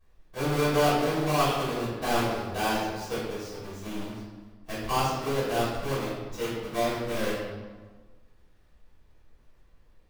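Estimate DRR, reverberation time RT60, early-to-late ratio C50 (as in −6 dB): −12.5 dB, 1.4 s, −0.5 dB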